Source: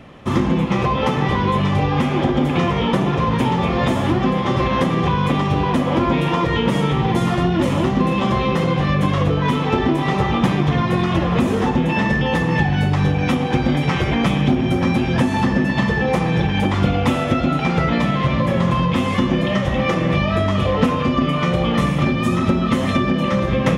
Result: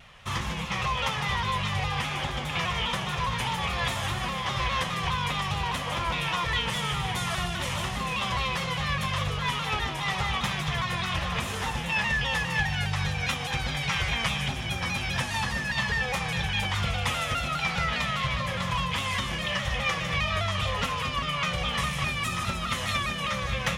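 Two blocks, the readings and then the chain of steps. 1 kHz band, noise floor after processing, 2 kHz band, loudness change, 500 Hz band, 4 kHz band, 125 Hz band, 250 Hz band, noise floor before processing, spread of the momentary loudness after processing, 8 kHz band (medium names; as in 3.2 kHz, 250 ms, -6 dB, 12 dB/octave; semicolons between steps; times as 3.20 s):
-8.0 dB, -32 dBFS, -3.0 dB, -9.5 dB, -16.5 dB, -0.5 dB, -12.5 dB, -20.0 dB, -21 dBFS, 3 LU, +2.5 dB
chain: amplifier tone stack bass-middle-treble 10-0-10; feedback echo behind a high-pass 152 ms, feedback 57%, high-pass 5.4 kHz, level -4 dB; vibrato with a chosen wave saw down 4.9 Hz, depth 100 cents; trim +1.5 dB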